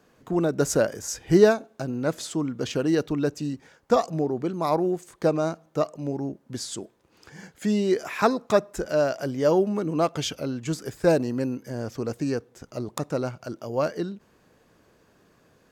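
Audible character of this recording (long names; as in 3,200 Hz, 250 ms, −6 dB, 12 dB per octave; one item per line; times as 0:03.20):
background noise floor −62 dBFS
spectral slope −5.5 dB per octave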